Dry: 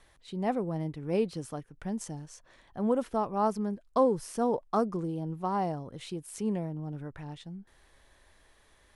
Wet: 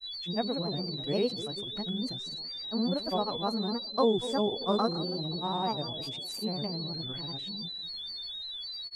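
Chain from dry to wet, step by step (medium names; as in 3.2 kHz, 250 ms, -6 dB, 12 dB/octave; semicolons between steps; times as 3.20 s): band-passed feedback delay 279 ms, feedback 45%, band-pass 450 Hz, level -11.5 dB; whistle 4 kHz -35 dBFS; granulator 107 ms, grains 20 per s, pitch spread up and down by 3 st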